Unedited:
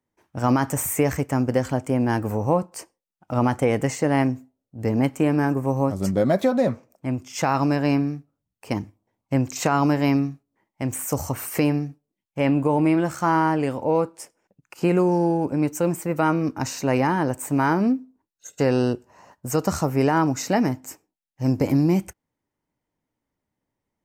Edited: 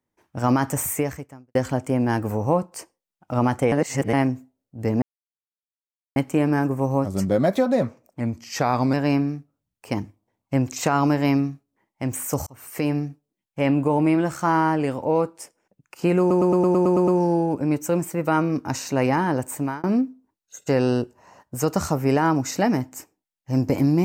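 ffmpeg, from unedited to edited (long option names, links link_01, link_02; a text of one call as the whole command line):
ffmpeg -i in.wav -filter_complex "[0:a]asplit=17[link_01][link_02][link_03][link_04][link_05][link_06][link_07][link_08][link_09][link_10][link_11][link_12][link_13][link_14][link_15][link_16][link_17];[link_01]atrim=end=1.55,asetpts=PTS-STARTPTS,afade=type=out:start_time=0.9:duration=0.65:curve=qua[link_18];[link_02]atrim=start=1.55:end=3.722,asetpts=PTS-STARTPTS,afade=type=in:duration=0.004:curve=hsin[link_19];[link_03]atrim=start=3.718:end=4.132,asetpts=PTS-STARTPTS,areverse[link_20];[link_04]atrim=start=4.128:end=5.02,asetpts=PTS-STARTPTS,afade=type=out:start_time=0.888:duration=0.004:curve=hsin,apad=pad_dur=1.14[link_21];[link_05]atrim=start=5.02:end=7.064,asetpts=PTS-STARTPTS,afade=type=in:duration=0.004:curve=hsin[link_22];[link_06]atrim=start=7.06:end=7.73,asetpts=PTS-STARTPTS,asetrate=40131,aresample=44100,atrim=end_sample=32469,asetpts=PTS-STARTPTS[link_23];[link_07]atrim=start=7.726:end=11.26,asetpts=PTS-STARTPTS,afade=type=out:start_time=3.53:duration=0.004:curve=hsin[link_24];[link_08]atrim=start=11.26:end=15.102,asetpts=PTS-STARTPTS,afade=type=in:duration=0.55[link_25];[link_09]atrim=start=14.988:end=15.102[link_26];[link_10]atrim=start=14.988:end=15.102[link_27];[link_11]atrim=start=14.988:end=15.102[link_28];[link_12]atrim=start=14.988:end=15.102[link_29];[link_13]atrim=start=14.988:end=15.102[link_30];[link_14]atrim=start=14.988:end=15.102[link_31];[link_15]atrim=start=14.988:end=15.102[link_32];[link_16]atrim=start=14.988:end=17.75,asetpts=PTS-STARTPTS,afade=type=out:start_time=2.462:duration=0.3[link_33];[link_17]atrim=start=17.75,asetpts=PTS-STARTPTS,afade=type=in:duration=0.004:curve=hsin[link_34];[link_18][link_19]concat=n=2:v=0:a=1[link_35];[link_35][link_20]acrossfade=duration=0.004:curve1=hsin:curve2=hsin[link_36];[link_21][link_22]concat=n=2:v=0:a=1[link_37];[link_36][link_37]acrossfade=duration=0.004:curve1=hsin:curve2=hsin[link_38];[link_38][link_23]acrossfade=duration=0.004:curve1=hsin:curve2=hsin[link_39];[link_24][link_25]concat=n=2:v=0:a=1[link_40];[link_39][link_40]acrossfade=duration=0.004:curve1=hsin:curve2=hsin[link_41];[link_41][link_26]acrossfade=duration=0.004:curve1=hsin:curve2=hsin[link_42];[link_42][link_27]acrossfade=duration=0.004:curve1=hsin:curve2=hsin[link_43];[link_43][link_28]acrossfade=duration=0.004:curve1=hsin:curve2=hsin[link_44];[link_44][link_29]acrossfade=duration=0.004:curve1=hsin:curve2=hsin[link_45];[link_45][link_30]acrossfade=duration=0.004:curve1=hsin:curve2=hsin[link_46];[link_46][link_31]acrossfade=duration=0.004:curve1=hsin:curve2=hsin[link_47];[link_47][link_32]acrossfade=duration=0.004:curve1=hsin:curve2=hsin[link_48];[link_33][link_34]concat=n=2:v=0:a=1[link_49];[link_48][link_49]acrossfade=duration=0.004:curve1=hsin:curve2=hsin" out.wav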